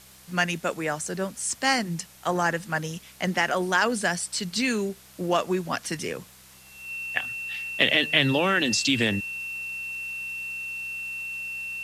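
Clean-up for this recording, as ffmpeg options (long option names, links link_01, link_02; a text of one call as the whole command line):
ffmpeg -i in.wav -af "adeclick=threshold=4,bandreject=frequency=64.5:width_type=h:width=4,bandreject=frequency=129:width_type=h:width=4,bandreject=frequency=193.5:width_type=h:width=4,bandreject=frequency=2700:width=30,afwtdn=0.0032" out.wav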